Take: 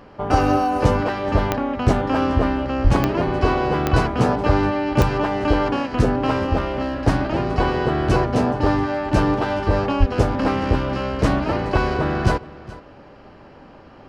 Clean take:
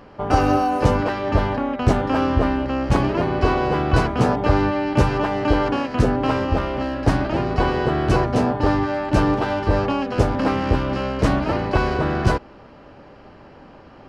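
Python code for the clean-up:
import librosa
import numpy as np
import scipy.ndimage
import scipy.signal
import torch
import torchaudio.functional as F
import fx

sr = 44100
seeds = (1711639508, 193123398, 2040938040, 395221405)

y = fx.fix_declick_ar(x, sr, threshold=10.0)
y = fx.highpass(y, sr, hz=140.0, slope=24, at=(2.83, 2.95), fade=0.02)
y = fx.highpass(y, sr, hz=140.0, slope=24, at=(9.99, 10.11), fade=0.02)
y = fx.fix_echo_inverse(y, sr, delay_ms=423, level_db=-19.0)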